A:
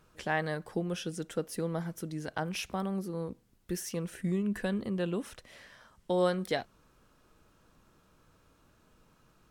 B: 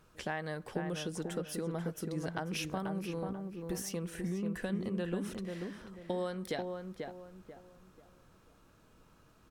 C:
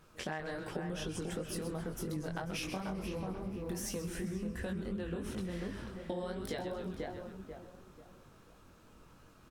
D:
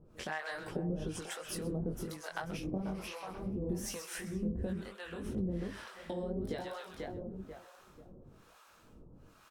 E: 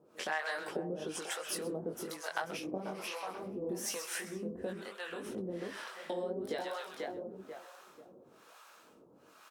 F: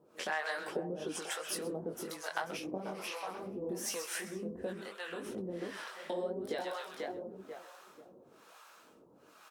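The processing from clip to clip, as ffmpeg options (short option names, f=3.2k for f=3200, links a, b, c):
-filter_complex "[0:a]acompressor=threshold=-33dB:ratio=6,asplit=2[a][b];[b]adelay=489,lowpass=f=1.6k:p=1,volume=-4dB,asplit=2[c][d];[d]adelay=489,lowpass=f=1.6k:p=1,volume=0.34,asplit=2[e][f];[f]adelay=489,lowpass=f=1.6k:p=1,volume=0.34,asplit=2[g][h];[h]adelay=489,lowpass=f=1.6k:p=1,volume=0.34[i];[c][e][g][i]amix=inputs=4:normalize=0[j];[a][j]amix=inputs=2:normalize=0"
-filter_complex "[0:a]flanger=delay=19:depth=4.6:speed=2.8,asplit=7[a][b][c][d][e][f][g];[b]adelay=130,afreqshift=-140,volume=-10dB[h];[c]adelay=260,afreqshift=-280,volume=-15.5dB[i];[d]adelay=390,afreqshift=-420,volume=-21dB[j];[e]adelay=520,afreqshift=-560,volume=-26.5dB[k];[f]adelay=650,afreqshift=-700,volume=-32.1dB[l];[g]adelay=780,afreqshift=-840,volume=-37.6dB[m];[a][h][i][j][k][l][m]amix=inputs=7:normalize=0,acompressor=threshold=-41dB:ratio=6,volume=6dB"
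-filter_complex "[0:a]acrossover=split=630[a][b];[a]aeval=exprs='val(0)*(1-1/2+1/2*cos(2*PI*1.1*n/s))':c=same[c];[b]aeval=exprs='val(0)*(1-1/2-1/2*cos(2*PI*1.1*n/s))':c=same[d];[c][d]amix=inputs=2:normalize=0,volume=5dB"
-af "highpass=370,volume=4dB"
-af "flanger=delay=1:depth=5.7:regen=80:speed=1.1:shape=sinusoidal,volume=4.5dB"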